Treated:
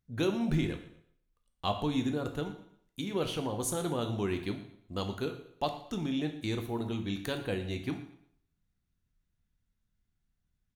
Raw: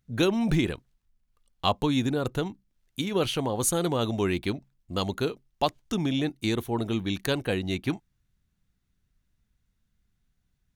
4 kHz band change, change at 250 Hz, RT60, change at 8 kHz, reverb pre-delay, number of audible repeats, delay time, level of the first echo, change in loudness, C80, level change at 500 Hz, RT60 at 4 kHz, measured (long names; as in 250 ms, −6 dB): −7.5 dB, −5.5 dB, 0.65 s, −8.5 dB, 6 ms, 2, 116 ms, −17.5 dB, −6.0 dB, 12.0 dB, −6.0 dB, 0.65 s